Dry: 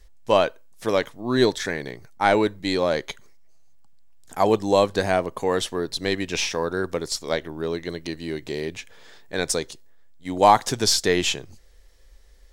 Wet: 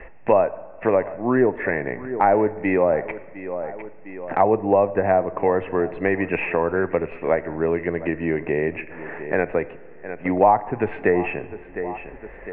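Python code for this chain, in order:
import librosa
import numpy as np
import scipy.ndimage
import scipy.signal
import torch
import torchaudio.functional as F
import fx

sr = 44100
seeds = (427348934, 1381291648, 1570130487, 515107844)

p1 = scipy.signal.sosfilt(scipy.signal.cheby1(6, 6, 2700.0, 'lowpass', fs=sr, output='sos'), x)
p2 = fx.env_lowpass_down(p1, sr, base_hz=1200.0, full_db=-19.5)
p3 = p2 + fx.echo_feedback(p2, sr, ms=706, feedback_pct=23, wet_db=-21.5, dry=0)
p4 = fx.rev_plate(p3, sr, seeds[0], rt60_s=1.0, hf_ratio=0.85, predelay_ms=0, drr_db=15.5)
p5 = fx.band_squash(p4, sr, depth_pct=70)
y = p5 * 10.0 ** (6.0 / 20.0)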